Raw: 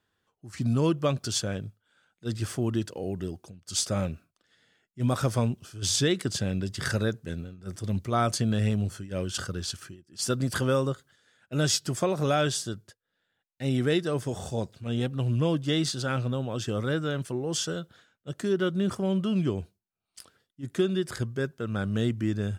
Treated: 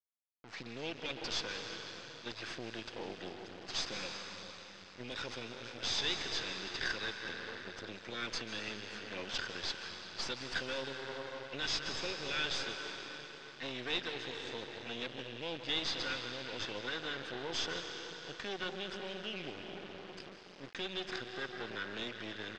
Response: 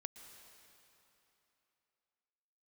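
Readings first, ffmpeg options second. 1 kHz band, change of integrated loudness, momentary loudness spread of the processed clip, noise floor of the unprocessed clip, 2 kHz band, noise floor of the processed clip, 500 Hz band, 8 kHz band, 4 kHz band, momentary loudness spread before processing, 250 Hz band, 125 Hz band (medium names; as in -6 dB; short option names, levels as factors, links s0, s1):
-9.5 dB, -10.5 dB, 11 LU, -82 dBFS, -2.0 dB, -53 dBFS, -13.5 dB, -14.5 dB, -2.5 dB, 12 LU, -18.0 dB, -24.5 dB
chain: -filter_complex "[0:a]asuperstop=centerf=880:order=20:qfactor=1[s0];[1:a]atrim=start_sample=2205,asetrate=36603,aresample=44100[s1];[s0][s1]afir=irnorm=-1:irlink=0,acrossover=split=120|2500[s2][s3][s4];[s3]alimiter=level_in=1.88:limit=0.0631:level=0:latency=1:release=161,volume=0.531[s5];[s4]aecho=1:1:0.8:0.39[s6];[s2][s5][s6]amix=inputs=3:normalize=0,acrossover=split=270[s7][s8];[s7]acompressor=threshold=0.00708:ratio=6[s9];[s9][s8]amix=inputs=2:normalize=0,tiltshelf=f=1200:g=-5.5,acrusher=bits=6:dc=4:mix=0:aa=0.000001,asplit=2[s10][s11];[s11]highpass=f=720:p=1,volume=7.94,asoftclip=type=tanh:threshold=0.133[s12];[s10][s12]amix=inputs=2:normalize=0,lowpass=f=2000:p=1,volume=0.501,lowpass=f=5200:w=0.5412,lowpass=f=5200:w=1.3066,volume=0.841"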